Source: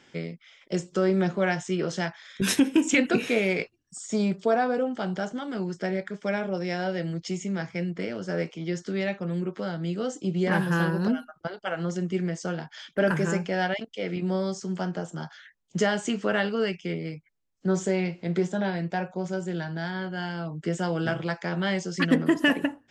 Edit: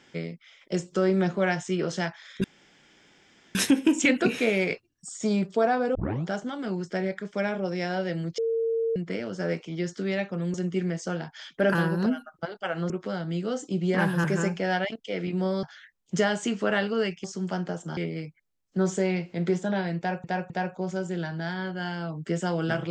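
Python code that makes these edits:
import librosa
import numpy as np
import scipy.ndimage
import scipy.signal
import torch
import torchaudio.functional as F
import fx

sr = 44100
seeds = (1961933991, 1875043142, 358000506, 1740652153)

y = fx.edit(x, sr, fx.insert_room_tone(at_s=2.44, length_s=1.11),
    fx.tape_start(start_s=4.84, length_s=0.31),
    fx.bleep(start_s=7.27, length_s=0.58, hz=455.0, db=-23.0),
    fx.swap(start_s=9.43, length_s=1.34, other_s=11.92, other_length_s=1.21),
    fx.move(start_s=14.52, length_s=0.73, to_s=16.86),
    fx.repeat(start_s=18.87, length_s=0.26, count=3), tone=tone)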